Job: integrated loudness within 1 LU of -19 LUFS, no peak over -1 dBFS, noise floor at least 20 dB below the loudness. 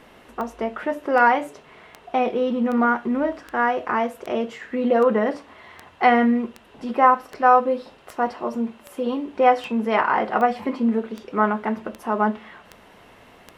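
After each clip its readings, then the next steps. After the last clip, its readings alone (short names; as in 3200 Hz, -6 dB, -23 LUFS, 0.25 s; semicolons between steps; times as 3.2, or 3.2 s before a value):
clicks 18; loudness -22.0 LUFS; peak -2.5 dBFS; loudness target -19.0 LUFS
-> de-click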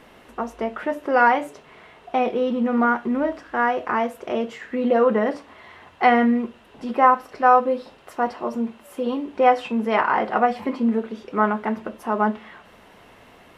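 clicks 0; loudness -22.0 LUFS; peak -2.5 dBFS; loudness target -19.0 LUFS
-> gain +3 dB; limiter -1 dBFS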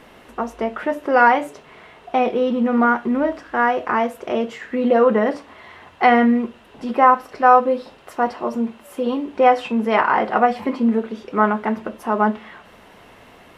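loudness -19.0 LUFS; peak -1.0 dBFS; noise floor -47 dBFS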